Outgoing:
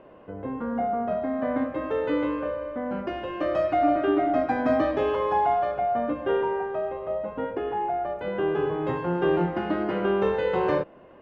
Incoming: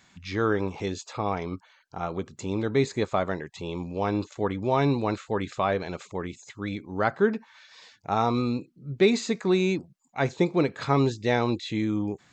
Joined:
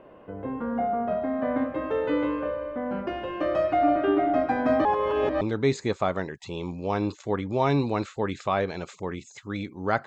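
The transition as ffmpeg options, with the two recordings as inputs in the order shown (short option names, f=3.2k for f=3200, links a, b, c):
-filter_complex "[0:a]apad=whole_dur=10.06,atrim=end=10.06,asplit=2[a][b];[a]atrim=end=4.852[c];[b]atrim=start=4.848:end=5.412,asetpts=PTS-STARTPTS,areverse[d];[1:a]atrim=start=2.528:end=7.18[e];[c][d]acrossfade=d=0.004:c1=hsin:c2=hsin[f];[f][e]acrossfade=d=0.004:c1=hsin:c2=hsin"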